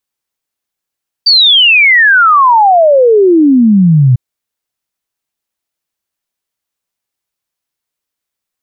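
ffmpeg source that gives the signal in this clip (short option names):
-f lavfi -i "aevalsrc='0.708*clip(min(t,2.9-t)/0.01,0,1)*sin(2*PI*4700*2.9/log(120/4700)*(exp(log(120/4700)*t/2.9)-1))':d=2.9:s=44100"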